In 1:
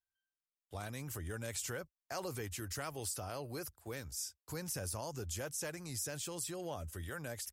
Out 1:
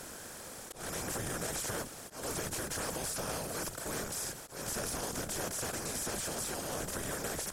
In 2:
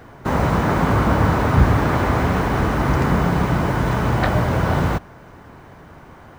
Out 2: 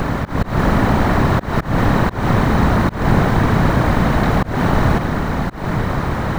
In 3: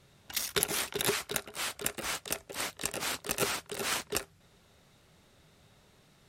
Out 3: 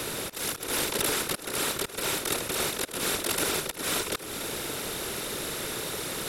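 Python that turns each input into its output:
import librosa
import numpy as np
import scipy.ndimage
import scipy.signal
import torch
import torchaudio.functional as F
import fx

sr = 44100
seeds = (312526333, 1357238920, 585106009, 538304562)

y = fx.bin_compress(x, sr, power=0.2)
y = fx.whisperise(y, sr, seeds[0])
y = fx.auto_swell(y, sr, attack_ms=185.0)
y = F.gain(torch.from_numpy(y), -4.0).numpy()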